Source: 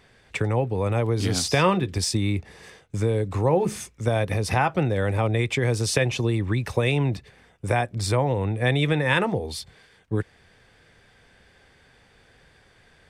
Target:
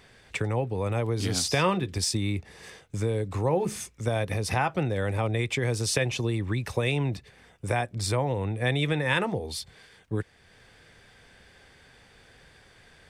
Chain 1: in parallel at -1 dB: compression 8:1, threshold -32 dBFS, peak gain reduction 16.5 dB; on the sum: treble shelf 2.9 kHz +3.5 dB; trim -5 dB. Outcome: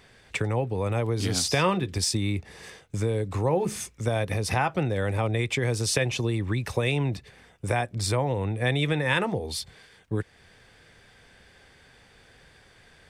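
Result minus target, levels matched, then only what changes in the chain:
compression: peak gain reduction -9.5 dB
change: compression 8:1, threshold -43 dBFS, peak gain reduction 26 dB

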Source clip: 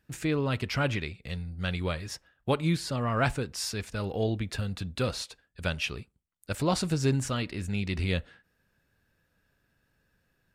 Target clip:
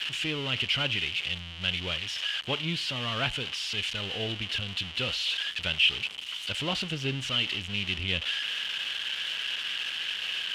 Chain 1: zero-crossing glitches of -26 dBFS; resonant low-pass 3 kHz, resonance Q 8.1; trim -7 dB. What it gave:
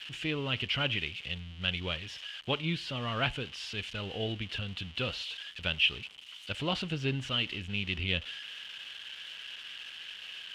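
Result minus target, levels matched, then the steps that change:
zero-crossing glitches: distortion -11 dB
change: zero-crossing glitches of -14.5 dBFS

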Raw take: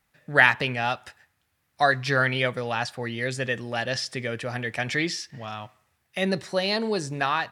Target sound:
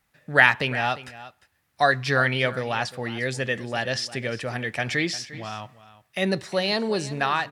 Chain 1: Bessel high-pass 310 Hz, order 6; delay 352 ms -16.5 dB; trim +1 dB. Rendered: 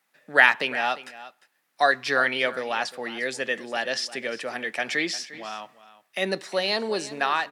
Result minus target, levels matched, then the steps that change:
250 Hz band -4.5 dB
remove: Bessel high-pass 310 Hz, order 6

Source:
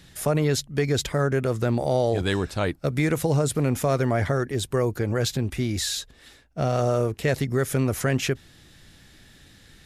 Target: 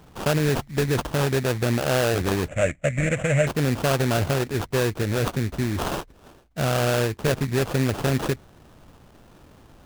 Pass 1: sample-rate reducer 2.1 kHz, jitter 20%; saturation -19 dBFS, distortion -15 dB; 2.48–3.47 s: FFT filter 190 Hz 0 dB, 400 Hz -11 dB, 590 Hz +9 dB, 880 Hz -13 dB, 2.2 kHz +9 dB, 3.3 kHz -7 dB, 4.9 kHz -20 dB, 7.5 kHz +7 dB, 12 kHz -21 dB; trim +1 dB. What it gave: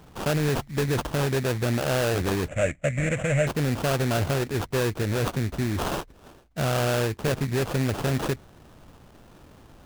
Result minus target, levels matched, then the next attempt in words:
saturation: distortion +16 dB
sample-rate reducer 2.1 kHz, jitter 20%; saturation -9 dBFS, distortion -30 dB; 2.48–3.47 s: FFT filter 190 Hz 0 dB, 400 Hz -11 dB, 590 Hz +9 dB, 880 Hz -13 dB, 2.2 kHz +9 dB, 3.3 kHz -7 dB, 4.9 kHz -20 dB, 7.5 kHz +7 dB, 12 kHz -21 dB; trim +1 dB

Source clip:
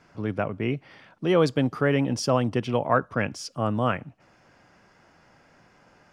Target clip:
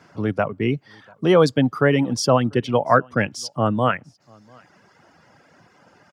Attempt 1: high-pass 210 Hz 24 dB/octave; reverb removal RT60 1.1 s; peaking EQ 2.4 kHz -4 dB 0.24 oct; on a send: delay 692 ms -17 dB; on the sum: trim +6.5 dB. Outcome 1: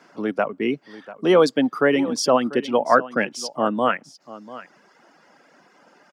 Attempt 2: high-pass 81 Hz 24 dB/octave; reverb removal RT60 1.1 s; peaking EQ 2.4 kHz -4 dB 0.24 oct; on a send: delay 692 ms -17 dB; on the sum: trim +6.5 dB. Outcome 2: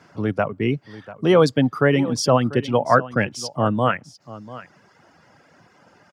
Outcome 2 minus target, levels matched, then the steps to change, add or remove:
echo-to-direct +12 dB
change: delay 692 ms -29 dB

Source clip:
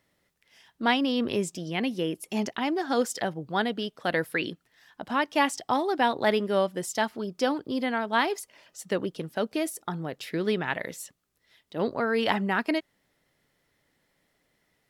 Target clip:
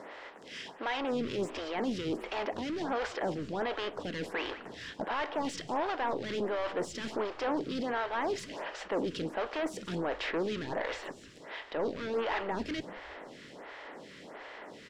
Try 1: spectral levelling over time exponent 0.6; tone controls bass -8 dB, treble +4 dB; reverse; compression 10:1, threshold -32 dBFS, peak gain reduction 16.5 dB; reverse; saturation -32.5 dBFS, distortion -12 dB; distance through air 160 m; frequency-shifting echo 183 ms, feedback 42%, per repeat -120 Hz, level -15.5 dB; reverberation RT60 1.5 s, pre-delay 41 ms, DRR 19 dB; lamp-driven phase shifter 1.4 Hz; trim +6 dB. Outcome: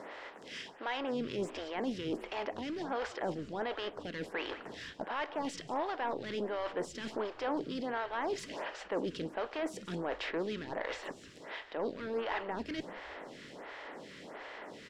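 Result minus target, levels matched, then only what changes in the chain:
compression: peak gain reduction +7.5 dB
change: compression 10:1, threshold -23.5 dBFS, peak gain reduction 9 dB

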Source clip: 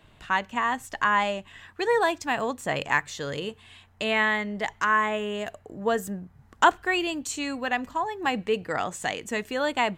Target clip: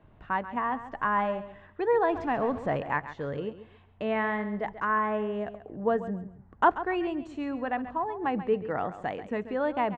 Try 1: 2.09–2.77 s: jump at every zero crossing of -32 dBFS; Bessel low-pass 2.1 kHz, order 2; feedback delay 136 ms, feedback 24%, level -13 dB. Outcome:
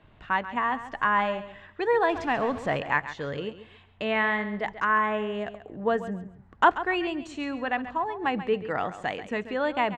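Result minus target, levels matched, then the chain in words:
2 kHz band +4.0 dB
2.09–2.77 s: jump at every zero crossing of -32 dBFS; Bessel low-pass 980 Hz, order 2; feedback delay 136 ms, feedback 24%, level -13 dB

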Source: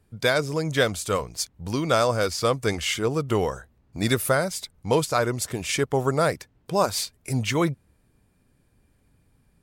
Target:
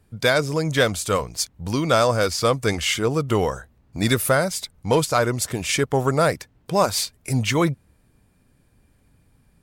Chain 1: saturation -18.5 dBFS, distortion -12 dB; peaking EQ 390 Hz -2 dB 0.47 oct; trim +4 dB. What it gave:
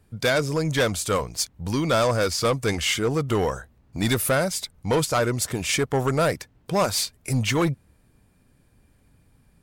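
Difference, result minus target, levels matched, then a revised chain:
saturation: distortion +13 dB
saturation -9 dBFS, distortion -25 dB; peaking EQ 390 Hz -2 dB 0.47 oct; trim +4 dB

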